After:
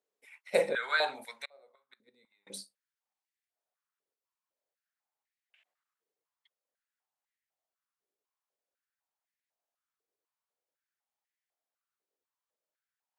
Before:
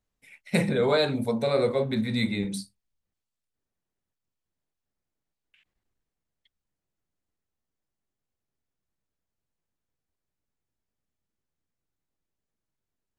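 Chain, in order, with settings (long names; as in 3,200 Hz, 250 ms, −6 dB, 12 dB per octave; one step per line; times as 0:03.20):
0:01.45–0:02.47: gate with flip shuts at −19 dBFS, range −34 dB
high-pass on a step sequencer 4 Hz 440–1,900 Hz
level −5.5 dB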